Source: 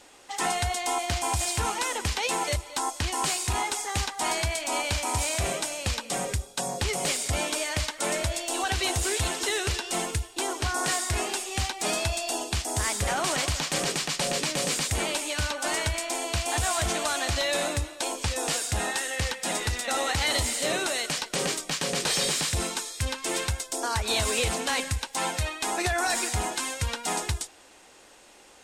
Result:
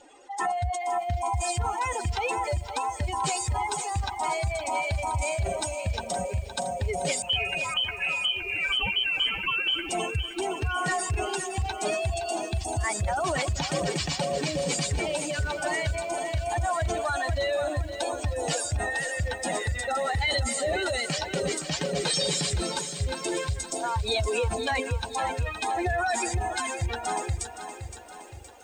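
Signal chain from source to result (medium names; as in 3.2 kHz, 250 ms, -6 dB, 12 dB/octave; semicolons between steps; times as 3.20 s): spectral contrast enhancement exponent 2.2; 7.22–9.89 s: frequency inversion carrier 3.1 kHz; bit-crushed delay 517 ms, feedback 55%, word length 9-bit, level -10 dB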